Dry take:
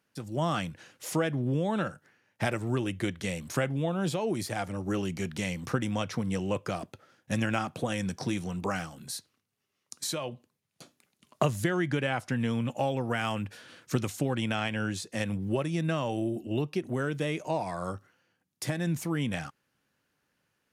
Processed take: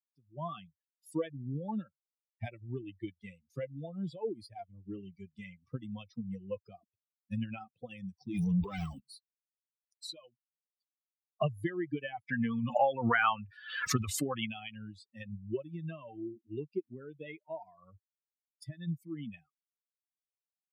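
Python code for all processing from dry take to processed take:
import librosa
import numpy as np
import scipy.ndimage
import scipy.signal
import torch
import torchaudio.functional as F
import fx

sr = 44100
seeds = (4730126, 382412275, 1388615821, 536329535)

y = fx.chain(x, sr, fx.highpass(hz=54.0, slope=12),
    fx.over_compress(threshold_db=-36.0, ratio=-1.0),
    fx.leveller(passes=5), at=(8.34, 9.0))
y = fx.chain(y, sr, fx.peak_eq(hz=1300.0, db=10.5, octaves=1.8),
    fx.pre_swell(db_per_s=34.0), at=(12.29, 14.47))
y = fx.bin_expand(y, sr, power=3.0)
y = fx.high_shelf(y, sr, hz=6200.0, db=-8.5)
y = y * 10.0 ** (1.0 / 20.0)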